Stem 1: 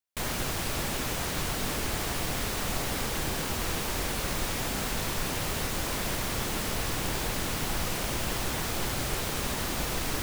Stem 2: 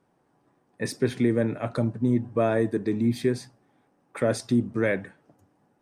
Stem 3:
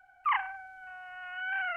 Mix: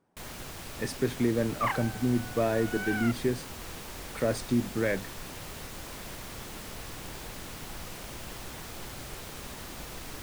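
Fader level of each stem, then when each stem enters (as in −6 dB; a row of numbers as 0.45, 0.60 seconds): −10.5, −4.0, −2.0 decibels; 0.00, 0.00, 1.35 seconds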